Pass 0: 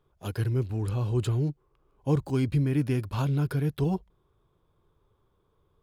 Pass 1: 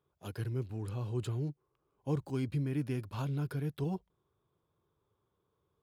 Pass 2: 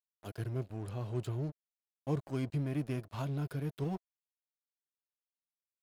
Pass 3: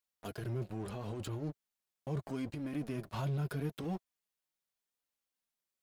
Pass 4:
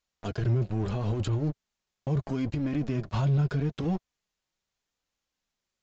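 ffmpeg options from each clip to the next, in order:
-af "highpass=88,volume=0.398"
-af "aeval=exprs='sgn(val(0))*max(abs(val(0))-0.00355,0)':c=same,equalizer=f=660:t=o:w=0.22:g=7.5"
-af "alimiter=level_in=3.16:limit=0.0631:level=0:latency=1:release=16,volume=0.316,flanger=delay=3.6:depth=1.9:regen=-35:speed=0.77:shape=sinusoidal,volume=2.82"
-af "alimiter=level_in=2:limit=0.0631:level=0:latency=1:release=240,volume=0.501,lowshelf=f=130:g=11.5,aresample=16000,aresample=44100,volume=2.37"

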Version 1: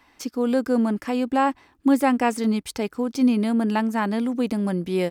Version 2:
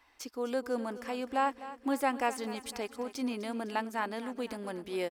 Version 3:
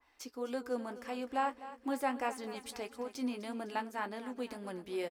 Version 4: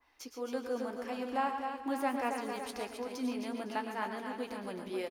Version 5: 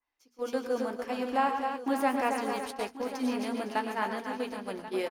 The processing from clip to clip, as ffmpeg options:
-af "equalizer=f=180:t=o:w=1.2:g=-15,aecho=1:1:253|506|759|1012|1265|1518:0.178|0.101|0.0578|0.0329|0.0188|0.0107,volume=0.447"
-filter_complex "[0:a]flanger=delay=4.7:depth=3.8:regen=-66:speed=1.7:shape=triangular,asplit=2[s0][s1];[s1]adelay=16,volume=0.224[s2];[s0][s2]amix=inputs=2:normalize=0,adynamicequalizer=threshold=0.00562:dfrequency=2000:dqfactor=0.7:tfrequency=2000:tqfactor=0.7:attack=5:release=100:ratio=0.375:range=2:mode=cutabove:tftype=highshelf"
-filter_complex "[0:a]bandreject=f=7800:w=6.9,asplit=2[s0][s1];[s1]aecho=0:1:108|120|141|268|416|560:0.211|0.282|0.237|0.422|0.119|0.282[s2];[s0][s2]amix=inputs=2:normalize=0"
-af "agate=range=0.0708:threshold=0.01:ratio=16:detection=peak,bandreject=f=60:t=h:w=6,bandreject=f=120:t=h:w=6,bandreject=f=180:t=h:w=6,bandreject=f=240:t=h:w=6,aecho=1:1:1086:0.2,volume=1.88"

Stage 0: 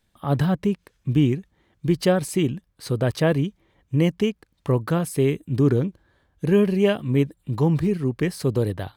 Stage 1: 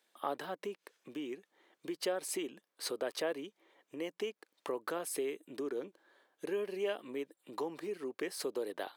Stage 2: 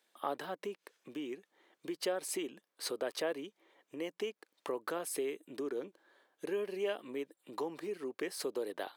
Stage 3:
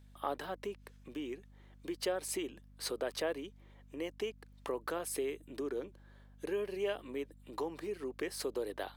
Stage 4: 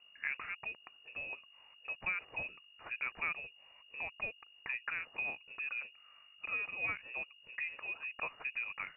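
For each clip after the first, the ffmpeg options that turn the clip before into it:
-af "acompressor=threshold=0.0398:ratio=6,highpass=f=350:w=0.5412,highpass=f=350:w=1.3066,volume=0.841"
-af anull
-af "aeval=exprs='val(0)+0.00141*(sin(2*PI*50*n/s)+sin(2*PI*2*50*n/s)/2+sin(2*PI*3*50*n/s)/3+sin(2*PI*4*50*n/s)/4+sin(2*PI*5*50*n/s)/5)':c=same"
-af "lowpass=f=2500:t=q:w=0.5098,lowpass=f=2500:t=q:w=0.6013,lowpass=f=2500:t=q:w=0.9,lowpass=f=2500:t=q:w=2.563,afreqshift=-2900,highshelf=f=2200:g=-12,volume=1.58"

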